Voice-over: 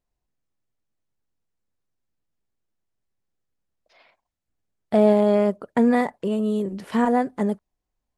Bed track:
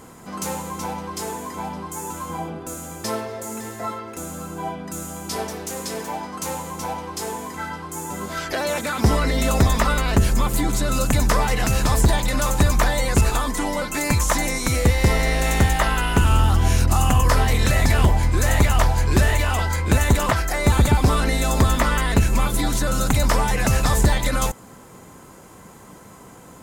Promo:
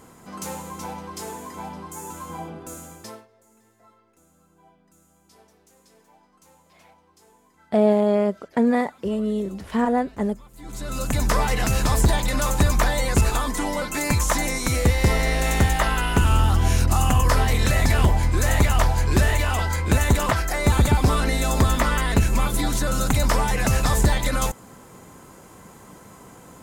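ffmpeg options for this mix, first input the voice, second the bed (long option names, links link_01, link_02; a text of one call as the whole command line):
ffmpeg -i stem1.wav -i stem2.wav -filter_complex "[0:a]adelay=2800,volume=-1dB[link_01];[1:a]volume=21dB,afade=type=out:start_time=2.77:duration=0.5:silence=0.0749894,afade=type=in:start_time=10.56:duration=0.83:silence=0.0501187[link_02];[link_01][link_02]amix=inputs=2:normalize=0" out.wav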